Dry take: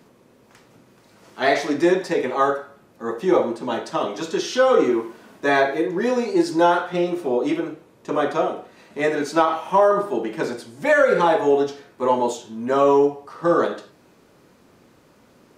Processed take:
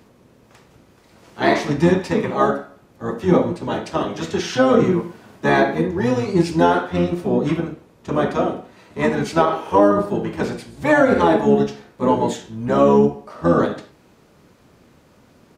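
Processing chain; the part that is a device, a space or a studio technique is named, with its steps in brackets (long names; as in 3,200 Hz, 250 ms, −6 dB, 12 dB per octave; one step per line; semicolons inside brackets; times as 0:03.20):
octave pedal (pitch-shifted copies added −12 semitones −2 dB)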